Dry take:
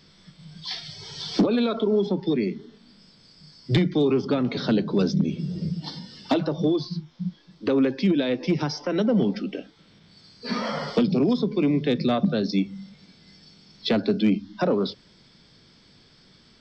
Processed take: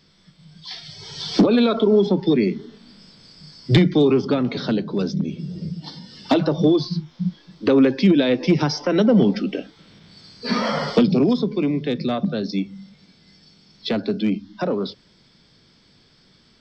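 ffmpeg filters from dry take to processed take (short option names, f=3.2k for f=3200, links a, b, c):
-af "volume=13dB,afade=t=in:st=0.7:d=0.85:silence=0.375837,afade=t=out:st=3.85:d=1.01:silence=0.446684,afade=t=in:st=5.99:d=0.47:silence=0.446684,afade=t=out:st=10.86:d=0.9:silence=0.473151"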